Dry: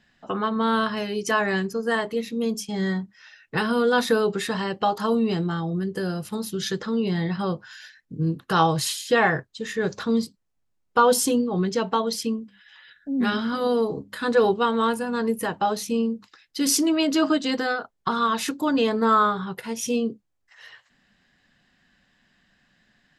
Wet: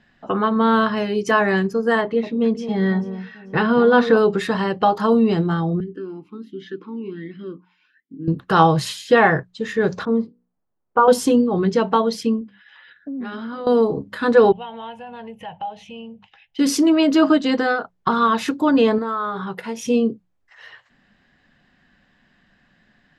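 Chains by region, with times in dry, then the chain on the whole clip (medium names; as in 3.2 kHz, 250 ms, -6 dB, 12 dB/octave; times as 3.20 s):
2.01–4.17 s: low-pass 3.9 kHz + echo whose repeats swap between lows and highs 220 ms, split 1.1 kHz, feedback 53%, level -10 dB
5.80–8.28 s: peaking EQ 390 Hz +8 dB 0.37 oct + talking filter i-u 1.3 Hz
10.05–11.08 s: low-pass 1.2 kHz + bass shelf 190 Hz -10 dB + hum notches 60/120/180/240/300/360/420/480 Hz
12.41–13.67 s: high-pass 150 Hz 6 dB/octave + compression, threshold -33 dBFS + distance through air 86 m
14.52–16.59 s: FFT filter 160 Hz 0 dB, 310 Hz -20 dB, 810 Hz +7 dB, 1.2 kHz -13 dB, 3 kHz +9 dB, 4.4 kHz -13 dB, 6.2 kHz -10 dB, 12 kHz -22 dB + compression 2:1, threshold -46 dBFS
18.98–19.85 s: compression 12:1, threshold -25 dBFS + bass shelf 160 Hz -10 dB
whole clip: low-pass 2 kHz 6 dB/octave; hum notches 60/120/180 Hz; trim +6.5 dB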